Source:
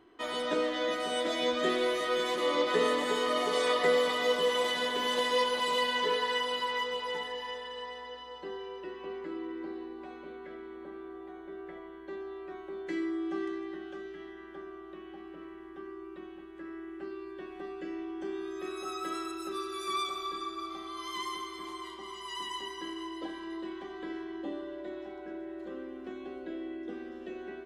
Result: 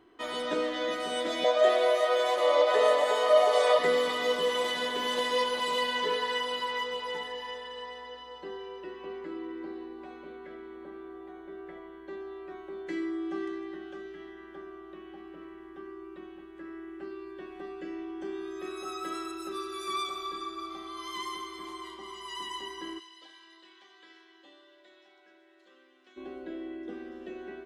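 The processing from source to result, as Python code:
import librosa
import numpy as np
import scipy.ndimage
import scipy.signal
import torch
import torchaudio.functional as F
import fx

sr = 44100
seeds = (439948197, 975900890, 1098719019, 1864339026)

y = fx.highpass_res(x, sr, hz=630.0, q=5.8, at=(1.44, 3.79))
y = fx.bandpass_q(y, sr, hz=4900.0, q=0.9, at=(22.98, 26.16), fade=0.02)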